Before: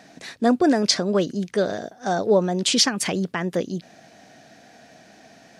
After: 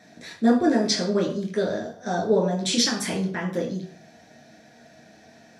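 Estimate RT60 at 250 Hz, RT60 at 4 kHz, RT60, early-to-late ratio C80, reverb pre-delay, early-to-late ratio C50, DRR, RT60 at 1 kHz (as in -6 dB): 0.55 s, 0.40 s, 0.50 s, 11.5 dB, 10 ms, 7.5 dB, -2.5 dB, 0.50 s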